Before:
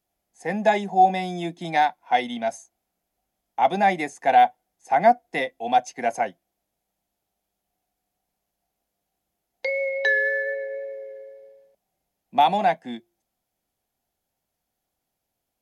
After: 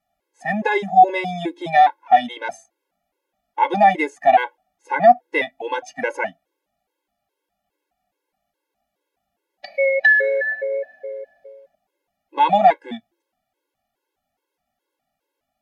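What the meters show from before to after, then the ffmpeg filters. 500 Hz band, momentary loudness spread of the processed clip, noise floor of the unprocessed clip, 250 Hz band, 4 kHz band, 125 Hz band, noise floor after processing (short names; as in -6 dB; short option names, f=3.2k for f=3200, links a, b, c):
+4.0 dB, 17 LU, -81 dBFS, +1.5 dB, +0.5 dB, +0.5 dB, -81 dBFS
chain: -af "bass=f=250:g=-9,treble=f=4k:g=-11,alimiter=level_in=10.5dB:limit=-1dB:release=50:level=0:latency=1,afftfilt=real='re*gt(sin(2*PI*2.4*pts/sr)*(1-2*mod(floor(b*sr/1024/280),2)),0)':imag='im*gt(sin(2*PI*2.4*pts/sr)*(1-2*mod(floor(b*sr/1024/280),2)),0)':win_size=1024:overlap=0.75,volume=-1dB"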